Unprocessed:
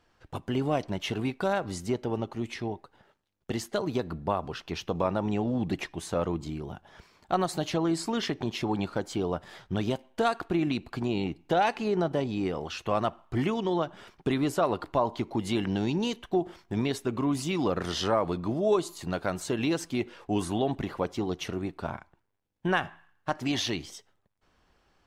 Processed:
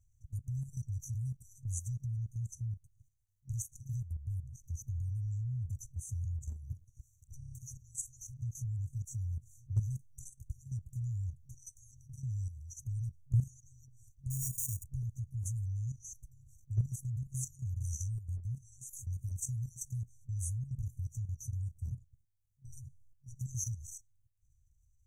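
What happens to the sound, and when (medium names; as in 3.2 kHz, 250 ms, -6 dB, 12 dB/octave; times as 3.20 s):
7.37 s: stutter in place 0.03 s, 6 plays
14.30–14.84 s: sorted samples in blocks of 32 samples
whole clip: FFT band-reject 130–5800 Hz; treble shelf 2 kHz -4.5 dB; level held to a coarse grid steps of 11 dB; trim +8.5 dB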